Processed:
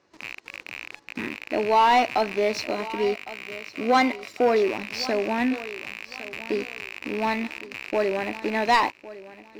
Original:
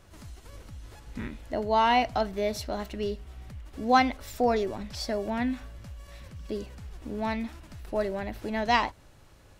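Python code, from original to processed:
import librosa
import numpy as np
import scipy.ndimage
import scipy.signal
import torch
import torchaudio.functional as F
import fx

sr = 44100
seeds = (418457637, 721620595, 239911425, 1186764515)

p1 = fx.rattle_buzz(x, sr, strikes_db=-44.0, level_db=-27.0)
p2 = fx.cabinet(p1, sr, low_hz=300.0, low_slope=12, high_hz=5600.0, hz=(320.0, 650.0, 1400.0, 3300.0), db=(4, -5, -5, -9))
p3 = fx.leveller(p2, sr, passes=2)
p4 = fx.notch_comb(p3, sr, f0_hz=870.0, at=(2.71, 4.55))
p5 = p4 + fx.echo_feedback(p4, sr, ms=1108, feedback_pct=26, wet_db=-17, dry=0)
y = F.gain(torch.from_numpy(p5), 1.0).numpy()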